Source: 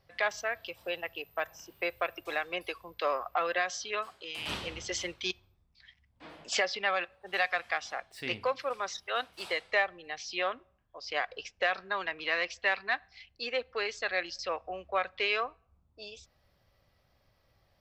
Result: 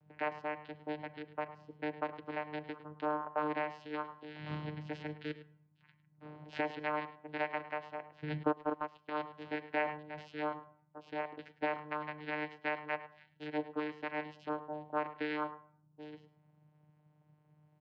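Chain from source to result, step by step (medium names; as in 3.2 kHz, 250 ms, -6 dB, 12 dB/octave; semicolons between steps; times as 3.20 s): dynamic bell 400 Hz, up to -4 dB, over -47 dBFS, Q 1; vocoder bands 8, saw 151 Hz; distance through air 340 m; echo from a far wall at 18 m, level -15 dB; on a send at -13.5 dB: reverberation RT60 0.60 s, pre-delay 3 ms; 8.43–9.10 s: on the sum: transient shaper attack +4 dB, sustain -10 dB; 9.78–10.43 s: decay stretcher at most 100 dB/s; trim -2.5 dB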